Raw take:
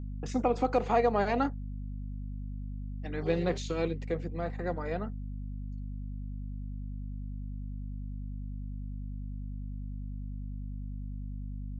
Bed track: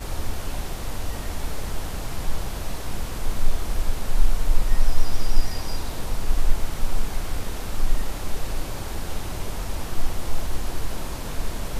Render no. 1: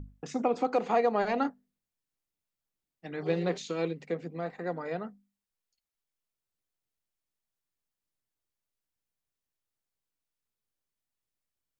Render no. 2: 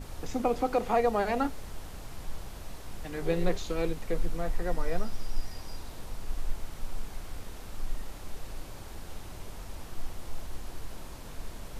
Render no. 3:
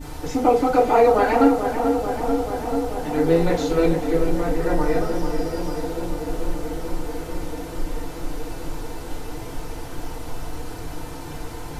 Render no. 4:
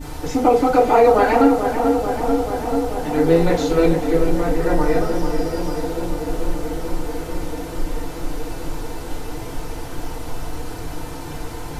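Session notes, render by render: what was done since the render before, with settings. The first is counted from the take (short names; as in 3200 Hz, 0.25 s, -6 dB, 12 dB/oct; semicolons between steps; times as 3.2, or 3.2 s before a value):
notches 50/100/150/200/250 Hz
add bed track -12.5 dB
darkening echo 0.438 s, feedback 83%, low-pass 2000 Hz, level -7 dB; FDN reverb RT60 0.33 s, low-frequency decay 0.8×, high-frequency decay 0.65×, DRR -9 dB
gain +3 dB; limiter -3 dBFS, peak gain reduction 2 dB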